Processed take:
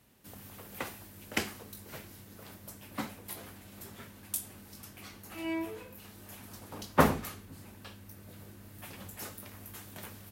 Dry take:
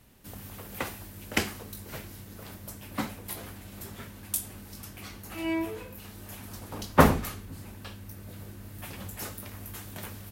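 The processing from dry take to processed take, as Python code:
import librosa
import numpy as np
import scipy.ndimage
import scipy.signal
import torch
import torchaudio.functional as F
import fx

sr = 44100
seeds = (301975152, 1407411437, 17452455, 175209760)

y = fx.highpass(x, sr, hz=110.0, slope=6)
y = y * 10.0 ** (-4.5 / 20.0)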